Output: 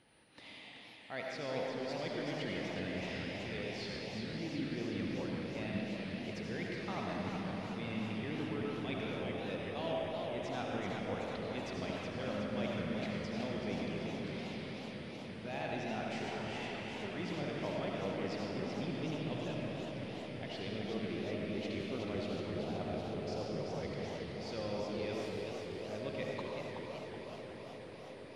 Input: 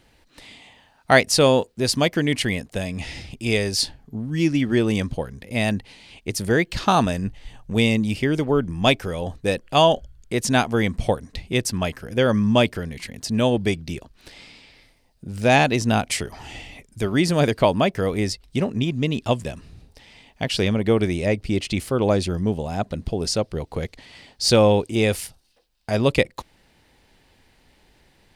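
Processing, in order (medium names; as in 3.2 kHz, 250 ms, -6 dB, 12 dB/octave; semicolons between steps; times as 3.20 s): high-pass 120 Hz; treble shelf 3.8 kHz +7.5 dB; reverse; compression 5:1, threshold -33 dBFS, peak gain reduction 21.5 dB; reverse; whistle 9.4 kHz -42 dBFS; distance through air 220 m; on a send: echo that smears into a reverb 569 ms, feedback 79%, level -10.5 dB; on the sum: algorithmic reverb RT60 1.9 s, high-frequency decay 0.95×, pre-delay 40 ms, DRR -1.5 dB; modulated delay 376 ms, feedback 63%, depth 176 cents, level -5.5 dB; trim -8 dB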